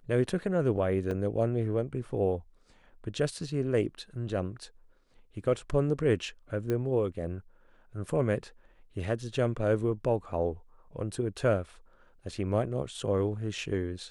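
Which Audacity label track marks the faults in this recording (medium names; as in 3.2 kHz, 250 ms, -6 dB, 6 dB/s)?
1.110000	1.110000	dropout 2.5 ms
6.700000	6.700000	pop -19 dBFS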